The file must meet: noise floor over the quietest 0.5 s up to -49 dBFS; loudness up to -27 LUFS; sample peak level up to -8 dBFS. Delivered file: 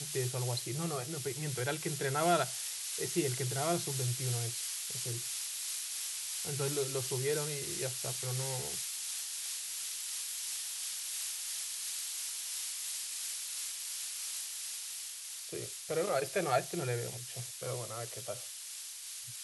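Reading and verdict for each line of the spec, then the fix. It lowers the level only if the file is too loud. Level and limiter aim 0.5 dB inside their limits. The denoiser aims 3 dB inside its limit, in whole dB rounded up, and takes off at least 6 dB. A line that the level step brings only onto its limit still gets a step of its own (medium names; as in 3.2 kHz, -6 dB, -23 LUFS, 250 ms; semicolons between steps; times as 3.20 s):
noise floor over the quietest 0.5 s -45 dBFS: fail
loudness -35.5 LUFS: pass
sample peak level -16.5 dBFS: pass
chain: noise reduction 7 dB, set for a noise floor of -45 dBFS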